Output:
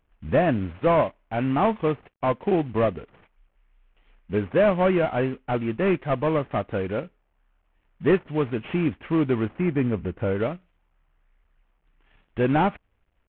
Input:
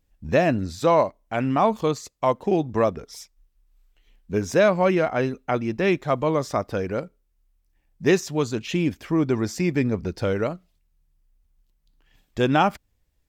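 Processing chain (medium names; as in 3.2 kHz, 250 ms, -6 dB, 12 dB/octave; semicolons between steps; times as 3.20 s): CVSD coder 16 kbps; 9.58–10.40 s: distance through air 260 m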